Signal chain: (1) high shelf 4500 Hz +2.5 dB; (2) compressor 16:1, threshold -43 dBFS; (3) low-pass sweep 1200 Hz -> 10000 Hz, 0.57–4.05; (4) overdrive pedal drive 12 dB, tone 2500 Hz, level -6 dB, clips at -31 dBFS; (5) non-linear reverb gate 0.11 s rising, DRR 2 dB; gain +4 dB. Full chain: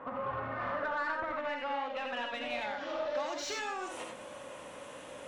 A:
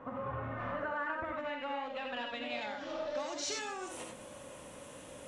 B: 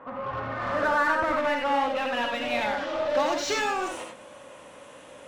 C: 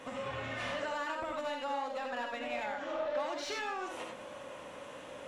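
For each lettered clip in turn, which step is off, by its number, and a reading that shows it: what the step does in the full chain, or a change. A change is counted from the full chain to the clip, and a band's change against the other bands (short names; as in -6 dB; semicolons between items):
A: 4, loudness change -2.0 LU; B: 2, mean gain reduction 10.0 dB; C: 3, momentary loudness spread change -2 LU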